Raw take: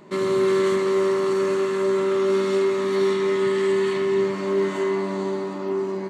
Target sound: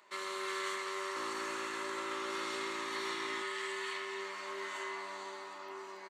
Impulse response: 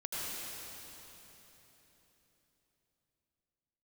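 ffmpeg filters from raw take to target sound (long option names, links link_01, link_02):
-filter_complex "[0:a]highpass=1100,asplit=3[link_01][link_02][link_03];[link_01]afade=type=out:start_time=1.15:duration=0.02[link_04];[link_02]asplit=7[link_05][link_06][link_07][link_08][link_09][link_10][link_11];[link_06]adelay=131,afreqshift=-56,volume=-6dB[link_12];[link_07]adelay=262,afreqshift=-112,volume=-12.6dB[link_13];[link_08]adelay=393,afreqshift=-168,volume=-19.1dB[link_14];[link_09]adelay=524,afreqshift=-224,volume=-25.7dB[link_15];[link_10]adelay=655,afreqshift=-280,volume=-32.2dB[link_16];[link_11]adelay=786,afreqshift=-336,volume=-38.8dB[link_17];[link_05][link_12][link_13][link_14][link_15][link_16][link_17]amix=inputs=7:normalize=0,afade=type=in:start_time=1.15:duration=0.02,afade=type=out:start_time=3.41:duration=0.02[link_18];[link_03]afade=type=in:start_time=3.41:duration=0.02[link_19];[link_04][link_18][link_19]amix=inputs=3:normalize=0,volume=-6dB"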